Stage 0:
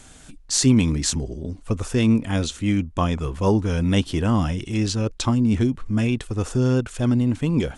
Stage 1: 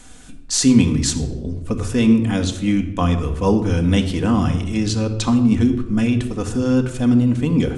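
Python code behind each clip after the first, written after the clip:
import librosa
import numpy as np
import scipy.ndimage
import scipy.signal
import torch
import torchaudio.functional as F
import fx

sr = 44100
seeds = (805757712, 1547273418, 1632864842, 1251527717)

y = fx.room_shoebox(x, sr, seeds[0], volume_m3=3700.0, walls='furnished', distance_m=1.9)
y = F.gain(torch.from_numpy(y), 1.0).numpy()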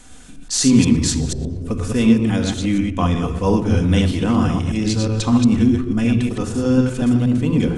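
y = fx.reverse_delay(x, sr, ms=121, wet_db=-3.5)
y = F.gain(torch.from_numpy(y), -1.0).numpy()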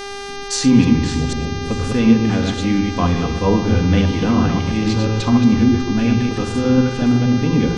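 y = fx.env_lowpass_down(x, sr, base_hz=2900.0, full_db=-13.0)
y = fx.echo_feedback(y, sr, ms=598, feedback_pct=55, wet_db=-18)
y = fx.dmg_buzz(y, sr, base_hz=400.0, harmonics=16, level_db=-31.0, tilt_db=-4, odd_only=False)
y = F.gain(torch.from_numpy(y), 1.0).numpy()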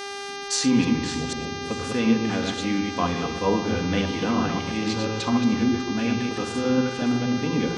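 y = fx.highpass(x, sr, hz=350.0, slope=6)
y = F.gain(torch.from_numpy(y), -3.0).numpy()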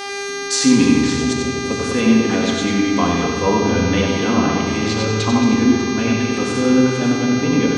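y = x + 10.0 ** (-6.0 / 20.0) * np.pad(x, (int(93 * sr / 1000.0), 0))[:len(x)]
y = fx.rev_fdn(y, sr, rt60_s=2.6, lf_ratio=1.25, hf_ratio=0.75, size_ms=22.0, drr_db=5.0)
y = F.gain(torch.from_numpy(y), 5.0).numpy()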